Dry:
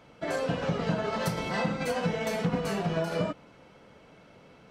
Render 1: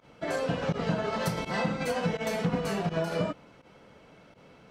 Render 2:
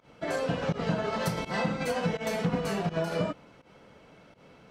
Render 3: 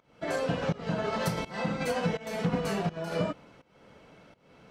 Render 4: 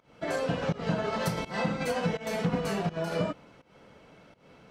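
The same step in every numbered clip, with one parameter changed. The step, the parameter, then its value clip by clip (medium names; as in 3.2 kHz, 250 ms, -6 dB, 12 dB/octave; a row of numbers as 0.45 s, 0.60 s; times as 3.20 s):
volume shaper, release: 70 ms, 111 ms, 376 ms, 227 ms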